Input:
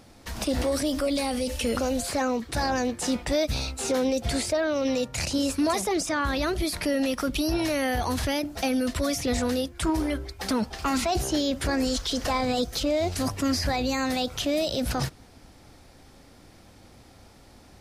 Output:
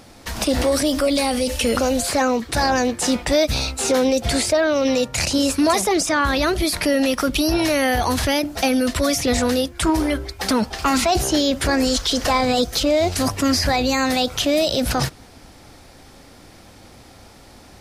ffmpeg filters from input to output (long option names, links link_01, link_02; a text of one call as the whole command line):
ffmpeg -i in.wav -af "lowshelf=frequency=350:gain=-3.5,volume=8.5dB" out.wav